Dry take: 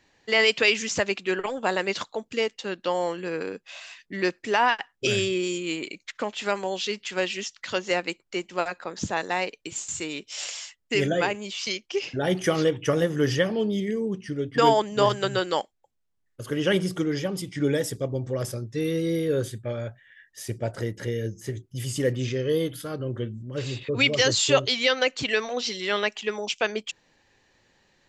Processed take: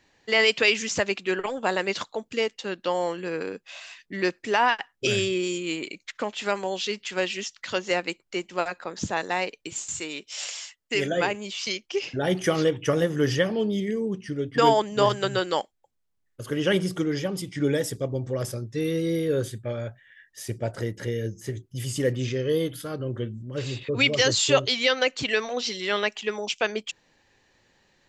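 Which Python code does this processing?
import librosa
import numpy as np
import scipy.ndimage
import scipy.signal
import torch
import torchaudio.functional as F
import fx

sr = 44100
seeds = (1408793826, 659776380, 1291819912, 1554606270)

y = fx.low_shelf(x, sr, hz=240.0, db=-8.5, at=(9.99, 11.17))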